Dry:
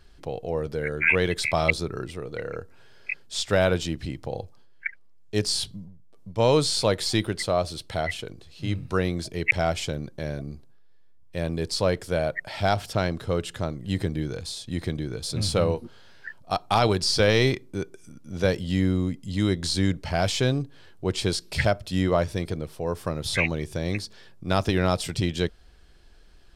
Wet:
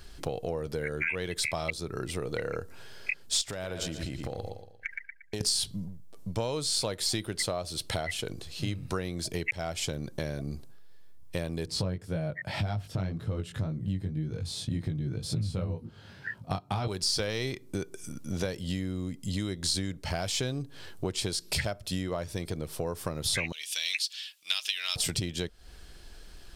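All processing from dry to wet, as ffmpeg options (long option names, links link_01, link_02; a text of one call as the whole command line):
ffmpeg -i in.wav -filter_complex "[0:a]asettb=1/sr,asplit=3[link_01][link_02][link_03];[link_01]atrim=end=3.414[link_04];[link_02]atrim=start=3.41:end=5.41,asetpts=PTS-STARTPTS,afade=type=in:duration=0.004:curve=qsin,afade=type=out:start_time=1.996:duration=0.004:curve=qsin,agate=range=-33dB:threshold=-40dB:ratio=3:release=100:detection=peak,aecho=1:1:116|232|348|464:0.237|0.083|0.029|0.0102,atrim=end_sample=88200,acompressor=threshold=-35dB:ratio=16:attack=3.2:release=140:knee=1:detection=peak[link_05];[link_03]atrim=start=5.406[link_06];[link_04][link_05]acrossfade=duration=0.004:curve1=hsin:curve2=qsin[link_07];[link_07][link_06]acrossfade=duration=0.004:curve1=qsin:curve2=hsin,asettb=1/sr,asplit=3[link_08][link_09][link_10];[link_08]atrim=end=11.664[link_11];[link_09]atrim=start=11.66:end=16.88,asetpts=PTS-STARTPTS,afade=type=in:duration=0.004:curve=qsin,afade=type=out:start_time=5.216:duration=0.004:curve=qsin,highpass=90,bass=frequency=250:gain=15,treble=frequency=4000:gain=-8,flanger=delay=18.5:depth=3.3:speed=1.9[link_12];[link_10]atrim=start=16.876[link_13];[link_11][link_12]acrossfade=duration=0.004:curve1=hsin:curve2=qsin[link_14];[link_14][link_13]acrossfade=duration=0.004:curve1=qsin:curve2=hsin,asettb=1/sr,asplit=3[link_15][link_16][link_17];[link_15]atrim=end=23.524[link_18];[link_16]atrim=start=23.52:end=24.96,asetpts=PTS-STARTPTS,afade=type=in:duration=0.004:curve=qsin,afade=type=out:start_time=1.436:duration=0.004:curve=qsin,highpass=frequency=2900:width_type=q:width=3.2,aecho=1:1:6.5:0.35,atrim=end_sample=63504[link_19];[link_17]atrim=start=24.956[link_20];[link_18][link_19]acrossfade=duration=0.004:curve1=hsin:curve2=qsin[link_21];[link_21][link_20]acrossfade=duration=0.004:curve1=qsin:curve2=hsin,acompressor=threshold=-34dB:ratio=10,highshelf=frequency=5500:gain=9.5,volume=5dB" out.wav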